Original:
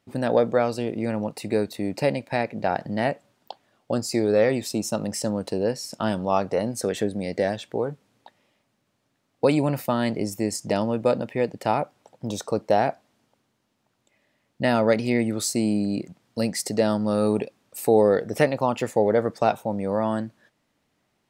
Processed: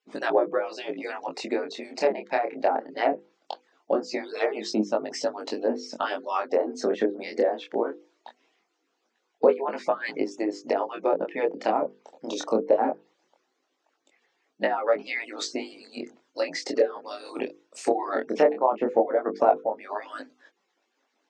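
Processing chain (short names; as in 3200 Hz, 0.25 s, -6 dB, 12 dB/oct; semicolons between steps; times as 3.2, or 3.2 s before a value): median-filter separation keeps percussive; elliptic band-pass 240–6700 Hz, stop band 40 dB; treble ducked by the level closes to 910 Hz, closed at -23 dBFS; chorus 0.2 Hz, delay 19 ms, depth 7.4 ms; notches 50/100/150/200/250/300/350/400/450/500 Hz; gain +7.5 dB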